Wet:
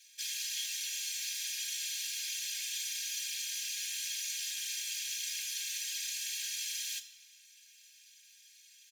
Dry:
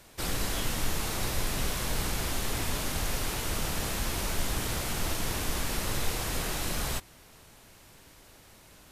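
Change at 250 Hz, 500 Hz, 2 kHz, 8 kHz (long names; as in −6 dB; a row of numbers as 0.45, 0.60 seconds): below −40 dB, below −40 dB, −6.5 dB, +0.5 dB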